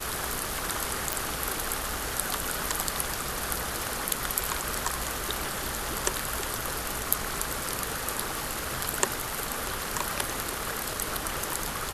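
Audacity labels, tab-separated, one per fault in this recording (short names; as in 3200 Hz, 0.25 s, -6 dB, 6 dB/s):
1.130000	1.130000	pop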